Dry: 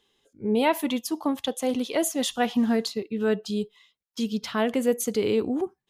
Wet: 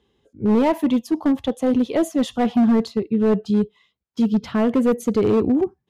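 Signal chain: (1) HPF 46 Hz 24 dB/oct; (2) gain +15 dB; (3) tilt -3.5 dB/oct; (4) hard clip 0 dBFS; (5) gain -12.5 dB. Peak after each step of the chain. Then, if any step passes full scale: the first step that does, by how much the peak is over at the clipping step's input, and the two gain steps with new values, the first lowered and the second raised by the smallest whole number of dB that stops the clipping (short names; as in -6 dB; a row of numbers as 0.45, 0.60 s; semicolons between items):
-10.5, +4.5, +8.0, 0.0, -12.5 dBFS; step 2, 8.0 dB; step 2 +7 dB, step 5 -4.5 dB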